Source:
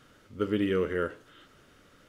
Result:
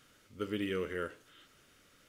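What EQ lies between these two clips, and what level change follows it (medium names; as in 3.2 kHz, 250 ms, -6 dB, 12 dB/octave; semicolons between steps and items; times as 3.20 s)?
peaking EQ 2.3 kHz +3.5 dB 0.55 oct; treble shelf 3.5 kHz +11.5 dB; -8.5 dB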